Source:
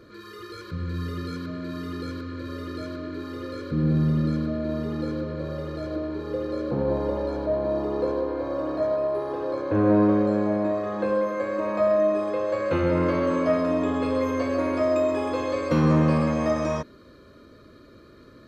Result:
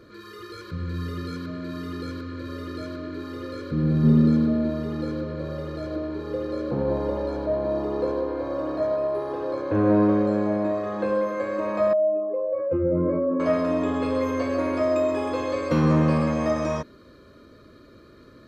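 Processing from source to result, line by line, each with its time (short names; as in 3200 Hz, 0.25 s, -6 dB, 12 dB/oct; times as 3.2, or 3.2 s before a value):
4.03–4.68 small resonant body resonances 220/410/840/3600 Hz, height 12 dB -> 8 dB
11.93–13.4 spectral contrast raised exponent 2.1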